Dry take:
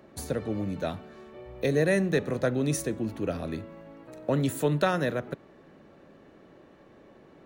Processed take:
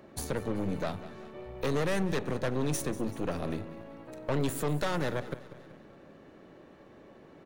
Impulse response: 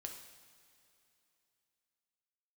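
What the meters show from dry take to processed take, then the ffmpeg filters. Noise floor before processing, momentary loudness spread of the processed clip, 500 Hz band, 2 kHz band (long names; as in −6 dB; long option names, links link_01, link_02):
−55 dBFS, 15 LU, −5.0 dB, −4.5 dB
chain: -af "aeval=exprs='(tanh(28.2*val(0)+0.8)-tanh(0.8))/28.2':channel_layout=same,aecho=1:1:191|382|573|764:0.141|0.0678|0.0325|0.0156,alimiter=level_in=3dB:limit=-24dB:level=0:latency=1:release=267,volume=-3dB,volume=5.5dB"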